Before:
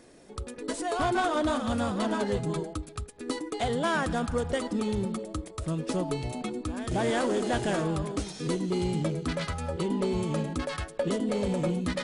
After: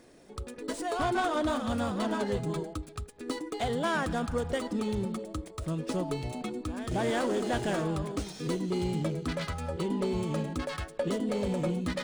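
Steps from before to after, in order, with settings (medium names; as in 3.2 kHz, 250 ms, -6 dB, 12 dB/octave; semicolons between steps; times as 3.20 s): median filter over 3 samples; trim -2 dB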